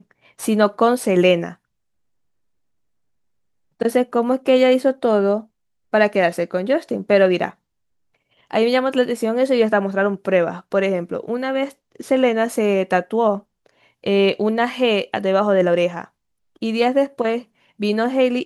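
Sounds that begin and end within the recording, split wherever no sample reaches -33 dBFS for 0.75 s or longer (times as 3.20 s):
3.81–7.51 s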